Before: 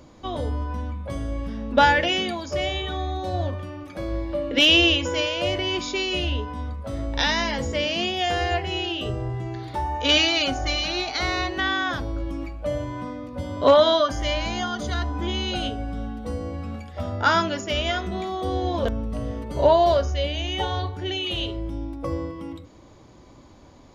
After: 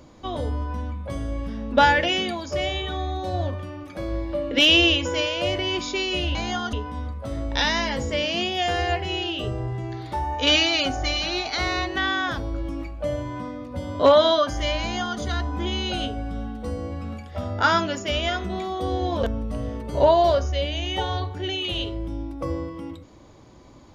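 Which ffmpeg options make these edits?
ffmpeg -i in.wav -filter_complex "[0:a]asplit=3[link_01][link_02][link_03];[link_01]atrim=end=6.352[link_04];[link_02]atrim=start=14.428:end=14.812[link_05];[link_03]atrim=start=6.348[link_06];[link_04][link_05]acrossfade=duration=0.004:curve1=hsin:curve2=hsin[link_07];[link_07][link_06]acrossfade=duration=0.004:curve1=hsin:curve2=hsin" out.wav

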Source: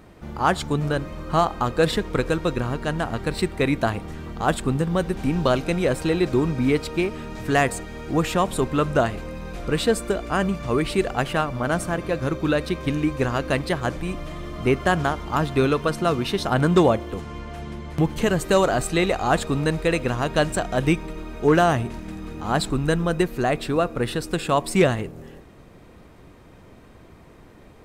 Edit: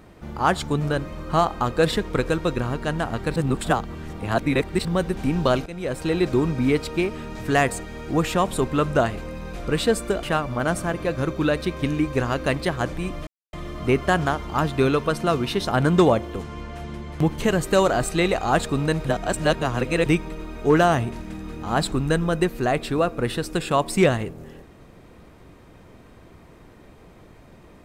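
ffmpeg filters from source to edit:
ffmpeg -i in.wav -filter_complex "[0:a]asplit=8[link_01][link_02][link_03][link_04][link_05][link_06][link_07][link_08];[link_01]atrim=end=3.362[link_09];[link_02]atrim=start=3.358:end=4.852,asetpts=PTS-STARTPTS,areverse[link_10];[link_03]atrim=start=4.848:end=5.66,asetpts=PTS-STARTPTS,afade=type=out:start_time=0.808:duration=0.004:curve=hsin:silence=0.158489[link_11];[link_04]atrim=start=5.66:end=10.232,asetpts=PTS-STARTPTS,afade=type=in:duration=0.53:silence=0.158489[link_12];[link_05]atrim=start=11.268:end=14.31,asetpts=PTS-STARTPTS,afade=type=out:start_time=3.038:duration=0.004:curve=hsin,apad=pad_dur=0.26[link_13];[link_06]atrim=start=14.31:end=19.832,asetpts=PTS-STARTPTS,afade=type=in:duration=0.004:curve=hsin[link_14];[link_07]atrim=start=19.828:end=20.842,asetpts=PTS-STARTPTS,areverse[link_15];[link_08]atrim=start=20.838[link_16];[link_09][link_10]acrossfade=duration=0.004:curve1=hsin:curve2=hsin[link_17];[link_11][link_12]concat=n=2:v=0:a=1[link_18];[link_17][link_18]acrossfade=duration=0.004:curve1=hsin:curve2=hsin[link_19];[link_13][link_14]concat=n=2:v=0:a=1[link_20];[link_19][link_20]acrossfade=duration=0.004:curve1=hsin:curve2=hsin[link_21];[link_21][link_15]acrossfade=duration=0.004:curve1=hsin:curve2=hsin[link_22];[link_22][link_16]acrossfade=duration=0.004:curve1=hsin:curve2=hsin" out.wav

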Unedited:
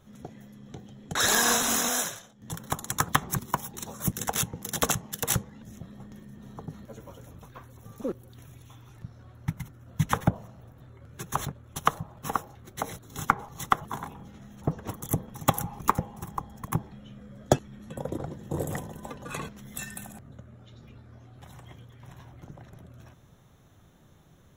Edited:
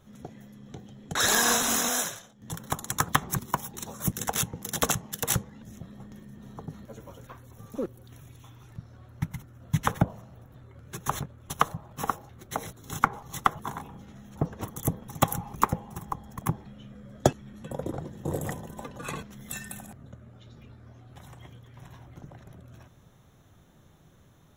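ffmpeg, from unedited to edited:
ffmpeg -i in.wav -filter_complex "[0:a]asplit=2[link_01][link_02];[link_01]atrim=end=7.272[link_03];[link_02]atrim=start=7.528[link_04];[link_03][link_04]acrossfade=duration=0.004:curve1=hsin:curve2=hsin" out.wav

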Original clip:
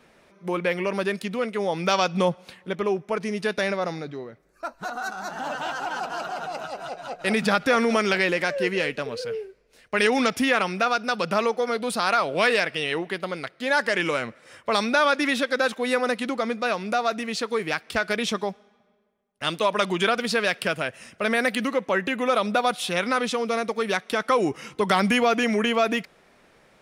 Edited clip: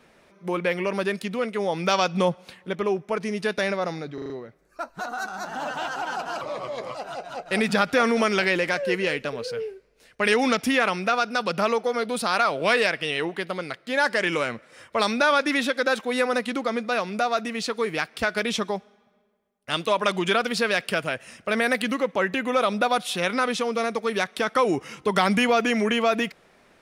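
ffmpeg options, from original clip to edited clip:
ffmpeg -i in.wav -filter_complex "[0:a]asplit=7[link_01][link_02][link_03][link_04][link_05][link_06][link_07];[link_01]atrim=end=4.182[link_08];[link_02]atrim=start=4.138:end=4.182[link_09];[link_03]atrim=start=4.138:end=4.182[link_10];[link_04]atrim=start=4.138:end=4.182[link_11];[link_05]atrim=start=4.138:end=6.254[link_12];[link_06]atrim=start=6.25:end=6.68,asetpts=PTS-STARTPTS,asetrate=35280,aresample=44100[link_13];[link_07]atrim=start=6.676[link_14];[link_08][link_09]acrossfade=duration=0.004:curve1=hsin:curve2=hsin[link_15];[link_15][link_10]acrossfade=duration=0.004:curve1=hsin:curve2=hsin[link_16];[link_16][link_11]acrossfade=duration=0.004:curve1=hsin:curve2=hsin[link_17];[link_17][link_12]acrossfade=duration=0.004:curve1=hsin:curve2=hsin[link_18];[link_18][link_13]acrossfade=duration=0.004:curve1=hsin:curve2=hsin[link_19];[link_19][link_14]acrossfade=duration=0.004:curve1=hsin:curve2=hsin" out.wav

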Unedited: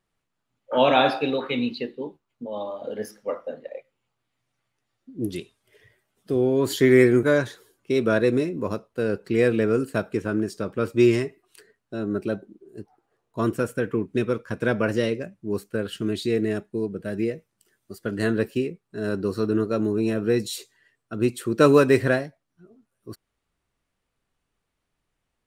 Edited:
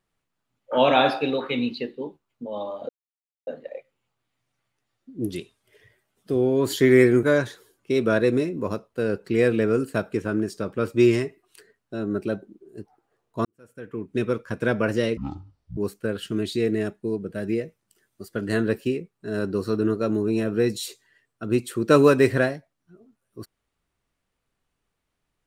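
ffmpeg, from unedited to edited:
ffmpeg -i in.wav -filter_complex "[0:a]asplit=6[link_01][link_02][link_03][link_04][link_05][link_06];[link_01]atrim=end=2.89,asetpts=PTS-STARTPTS,afade=type=out:start_time=2.886:duration=0.004:curve=hsin[link_07];[link_02]atrim=start=2.89:end=3.47,asetpts=PTS-STARTPTS,volume=0[link_08];[link_03]atrim=start=3.47:end=13.45,asetpts=PTS-STARTPTS,afade=type=in:duration=0.004:curve=hsin,afade=type=out:start_time=9.976:duration=0.004:curve=hsin[link_09];[link_04]atrim=start=13.45:end=15.174,asetpts=PTS-STARTPTS,afade=type=in:duration=0.79:curve=qua[link_10];[link_05]atrim=start=15.17:end=15.47,asetpts=PTS-STARTPTS,asetrate=22050,aresample=44100[link_11];[link_06]atrim=start=15.466[link_12];[link_07][link_08][link_09][link_10]concat=n=4:v=0:a=1[link_13];[link_13][link_11]acrossfade=duration=0.004:curve1=hsin:curve2=hsin[link_14];[link_14][link_12]acrossfade=duration=0.004:curve1=hsin:curve2=hsin" out.wav

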